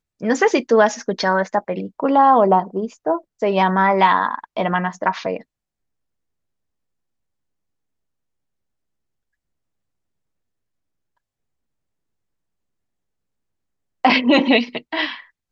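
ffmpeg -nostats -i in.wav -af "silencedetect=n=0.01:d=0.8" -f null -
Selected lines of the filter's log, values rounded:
silence_start: 5.42
silence_end: 14.04 | silence_duration: 8.62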